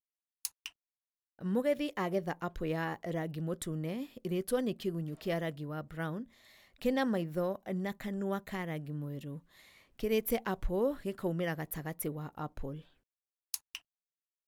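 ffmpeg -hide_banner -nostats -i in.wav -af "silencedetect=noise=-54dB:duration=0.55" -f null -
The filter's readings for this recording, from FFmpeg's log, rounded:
silence_start: 0.70
silence_end: 1.39 | silence_duration: 0.69
silence_start: 12.88
silence_end: 13.54 | silence_duration: 0.66
silence_start: 13.79
silence_end: 14.48 | silence_duration: 0.69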